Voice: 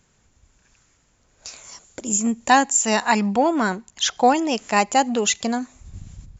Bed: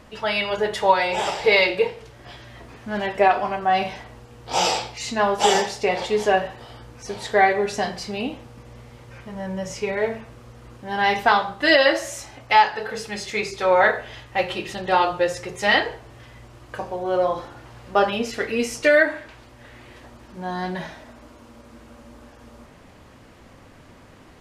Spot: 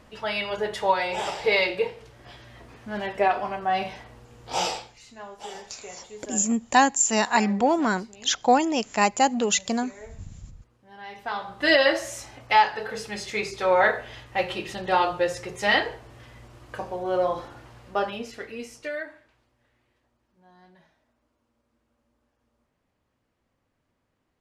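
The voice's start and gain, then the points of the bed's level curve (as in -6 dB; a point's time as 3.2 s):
4.25 s, -2.5 dB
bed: 4.62 s -5 dB
5.08 s -21 dB
11.1 s -21 dB
11.64 s -3 dB
17.54 s -3 dB
20.03 s -27.5 dB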